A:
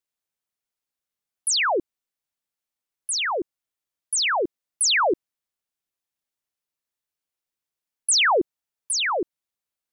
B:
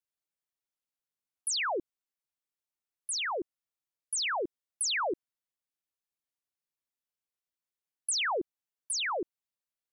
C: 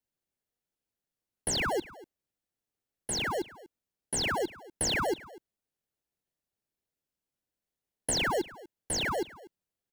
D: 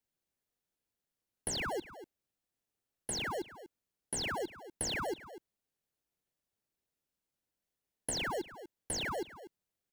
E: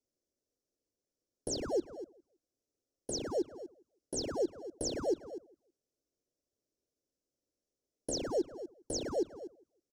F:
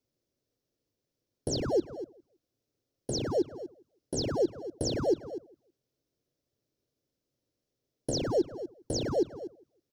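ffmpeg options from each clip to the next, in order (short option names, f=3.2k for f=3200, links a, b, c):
-af "acompressor=threshold=-21dB:ratio=6,volume=-7.5dB"
-filter_complex "[0:a]asplit=2[a][b];[b]acrusher=samples=36:mix=1:aa=0.000001,volume=-5dB[c];[a][c]amix=inputs=2:normalize=0,aecho=1:1:243:0.106"
-af "acompressor=threshold=-37dB:ratio=2.5"
-filter_complex "[0:a]firequalizer=gain_entry='entry(120,0);entry(180,-4);entry(270,7);entry(560,7);entry(860,-10);entry(1400,-10);entry(2000,-21);entry(5500,4);entry(9900,-9);entry(14000,-15)':delay=0.05:min_phase=1,asplit=2[a][b];[b]adelay=162,lowpass=f=1.3k:p=1,volume=-19.5dB,asplit=2[c][d];[d]adelay=162,lowpass=f=1.3k:p=1,volume=0.24[e];[a][c][e]amix=inputs=3:normalize=0"
-af "equalizer=f=125:t=o:w=1:g=11,equalizer=f=4k:t=o:w=1:g=4,equalizer=f=8k:t=o:w=1:g=-7,volume=4.5dB"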